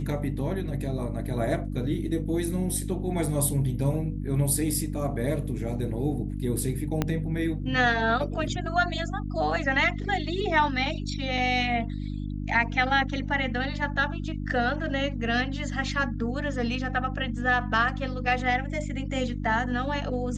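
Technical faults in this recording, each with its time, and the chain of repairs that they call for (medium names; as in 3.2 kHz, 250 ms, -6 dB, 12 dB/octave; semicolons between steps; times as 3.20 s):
hum 50 Hz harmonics 6 -32 dBFS
7.02 s: pop -11 dBFS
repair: de-click; de-hum 50 Hz, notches 6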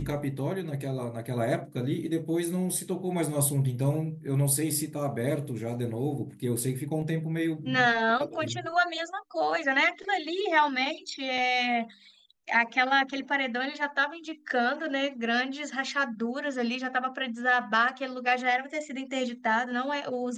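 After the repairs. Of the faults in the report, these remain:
7.02 s: pop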